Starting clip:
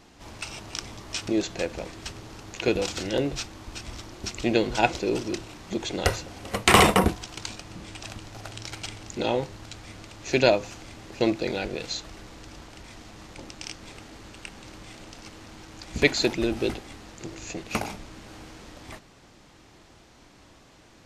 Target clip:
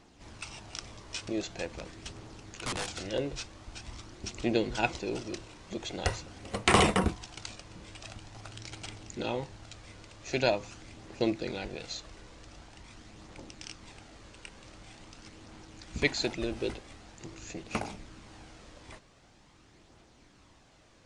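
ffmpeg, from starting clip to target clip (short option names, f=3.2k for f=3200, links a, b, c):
-filter_complex "[0:a]asettb=1/sr,asplit=3[a][b][c];[a]atrim=end=1.794[d];[b]atrim=start=1.79:end=3.01,asetpts=PTS-STARTPTS,afade=t=in:d=0.004:c=qsin,afade=t=out:st=1.216:d=0.004:c=qsin,aeval=exprs='(mod(11.9*val(0)+1,2)-1)/11.9':c=same[e];[c]atrim=start=3.006[f];[d][e]acrossfade=d=0.004:c1=hsin:c2=qsin[g];[g][f]acrossfade=d=0.004:c1=qsin:c2=hsin,aphaser=in_gain=1:out_gain=1:delay=2.1:decay=0.26:speed=0.45:type=triangular,aresample=22050,aresample=44100,volume=-7dB"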